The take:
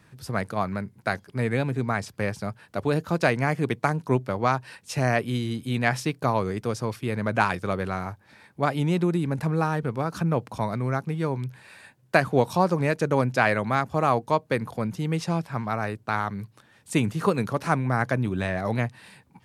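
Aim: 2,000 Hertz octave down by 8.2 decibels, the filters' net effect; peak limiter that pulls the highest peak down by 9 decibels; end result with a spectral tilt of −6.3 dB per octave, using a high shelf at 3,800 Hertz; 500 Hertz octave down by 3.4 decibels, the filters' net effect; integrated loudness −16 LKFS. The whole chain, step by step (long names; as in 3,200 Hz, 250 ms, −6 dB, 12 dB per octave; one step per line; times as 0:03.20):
parametric band 500 Hz −3.5 dB
parametric band 2,000 Hz −9 dB
high-shelf EQ 3,800 Hz −8.5 dB
level +13.5 dB
brickwall limiter −2.5 dBFS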